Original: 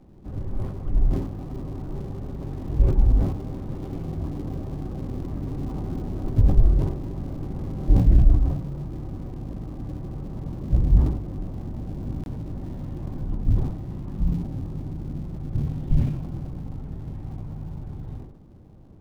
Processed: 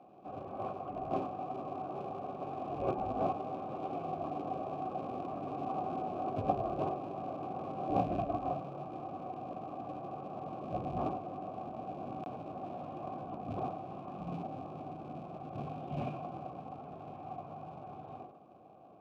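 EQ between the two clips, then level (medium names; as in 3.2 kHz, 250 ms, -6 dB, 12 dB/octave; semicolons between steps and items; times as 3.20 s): vowel filter a; high-pass 110 Hz 12 dB/octave; +13.5 dB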